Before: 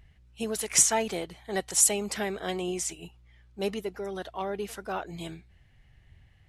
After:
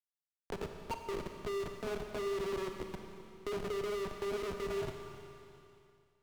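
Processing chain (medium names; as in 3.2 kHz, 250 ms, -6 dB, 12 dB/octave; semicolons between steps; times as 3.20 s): level-controlled noise filter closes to 420 Hz, open at -23 dBFS; graphic EQ 250/1000/8000 Hz +9/+9/-5 dB; waveshaping leveller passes 3; reverse; compression 16:1, threshold -31 dBFS, peak gain reduction 19 dB; reverse; auto-wah 410–1900 Hz, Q 3.7, down, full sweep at -35.5 dBFS; inharmonic resonator 180 Hz, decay 0.39 s, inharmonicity 0.03; Schmitt trigger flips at -53 dBFS; overdrive pedal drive 18 dB, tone 4.2 kHz, clips at -49 dBFS; Schroeder reverb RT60 1.9 s, combs from 30 ms, DRR 5 dB; speed mistake 24 fps film run at 25 fps; three bands compressed up and down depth 40%; trim +15.5 dB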